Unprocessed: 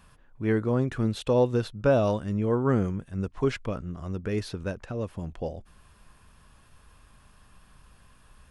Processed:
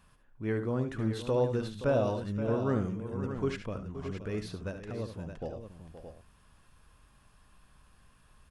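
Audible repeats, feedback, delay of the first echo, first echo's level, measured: 3, no regular repeats, 71 ms, -10.0 dB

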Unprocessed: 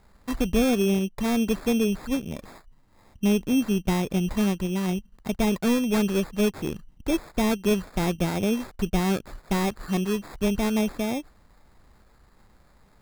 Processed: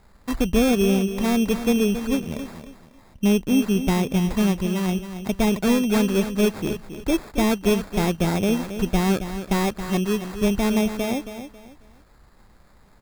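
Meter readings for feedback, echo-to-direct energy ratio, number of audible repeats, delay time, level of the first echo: 29%, -10.0 dB, 3, 273 ms, -10.5 dB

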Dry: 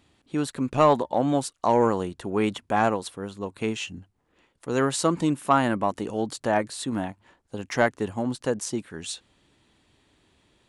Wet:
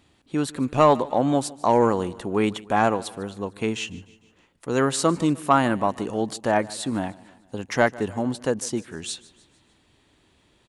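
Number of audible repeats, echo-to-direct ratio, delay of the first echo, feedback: 3, -19.5 dB, 151 ms, 51%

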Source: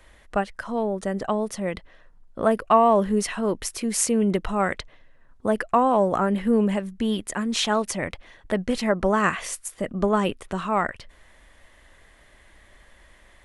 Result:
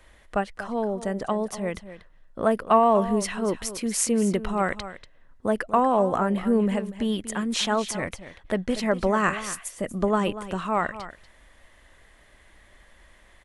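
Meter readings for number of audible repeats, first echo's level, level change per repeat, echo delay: 1, -13.5 dB, no regular repeats, 239 ms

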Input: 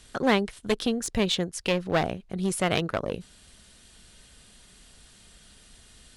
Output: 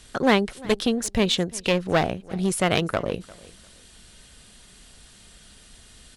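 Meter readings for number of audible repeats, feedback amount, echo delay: 2, 24%, 349 ms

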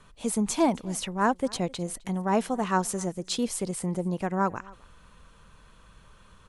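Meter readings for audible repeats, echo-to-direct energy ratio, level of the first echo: 1, -24.0 dB, -24.0 dB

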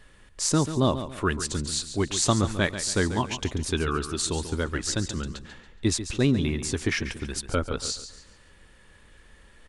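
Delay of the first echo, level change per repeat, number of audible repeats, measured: 140 ms, -9.5 dB, 3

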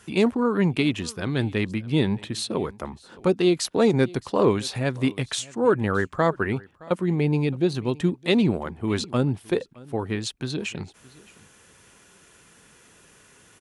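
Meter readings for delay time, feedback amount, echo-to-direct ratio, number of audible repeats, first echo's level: 618 ms, no regular repeats, -22.5 dB, 1, -22.5 dB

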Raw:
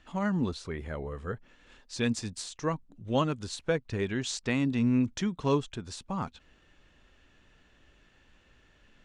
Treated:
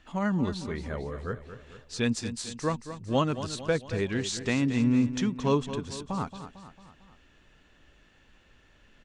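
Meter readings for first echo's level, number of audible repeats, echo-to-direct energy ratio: -11.5 dB, 4, -10.0 dB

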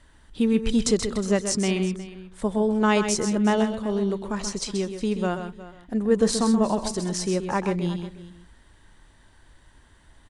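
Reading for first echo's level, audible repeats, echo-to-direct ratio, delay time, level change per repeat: -8.5 dB, 3, -7.5 dB, 130 ms, no regular repeats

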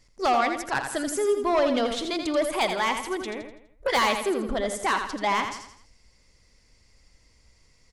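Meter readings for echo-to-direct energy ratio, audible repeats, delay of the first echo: -6.0 dB, 4, 83 ms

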